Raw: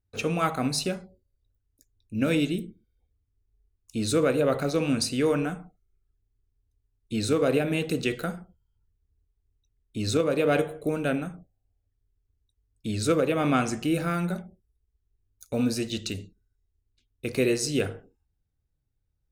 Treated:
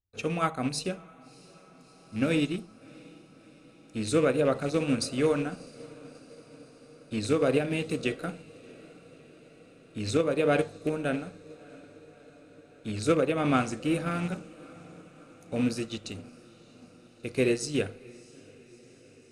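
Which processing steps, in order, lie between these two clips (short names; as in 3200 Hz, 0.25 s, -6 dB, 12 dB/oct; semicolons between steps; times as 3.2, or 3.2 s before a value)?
rattling part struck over -28 dBFS, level -29 dBFS; Chebyshev low-pass 10000 Hz, order 3; diffused feedback echo 0.653 s, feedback 73%, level -15 dB; upward expander 1.5:1, over -41 dBFS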